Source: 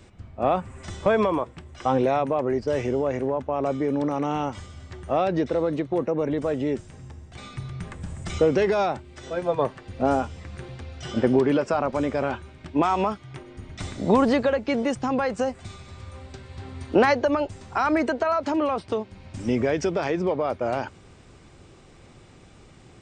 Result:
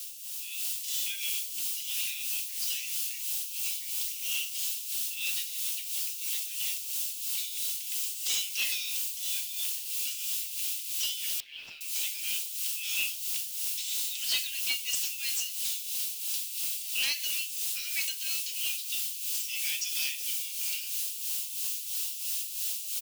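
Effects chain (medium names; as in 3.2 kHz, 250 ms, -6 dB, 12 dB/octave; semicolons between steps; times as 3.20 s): in parallel at -6.5 dB: word length cut 6-bit, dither triangular; on the sum: elliptic high-pass 2.7 kHz, stop band 60 dB; tilt EQ +2 dB/octave; on a send at -4.5 dB: reverberation RT60 0.60 s, pre-delay 4 ms; on the sum: tremolo 3 Hz, depth 63%; saturation -28 dBFS, distortion -17 dB; echo from a far wall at 180 m, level -28 dB; level rider gain up to 7.5 dB; 11.40–11.81 s: distance through air 370 m; trim -2 dB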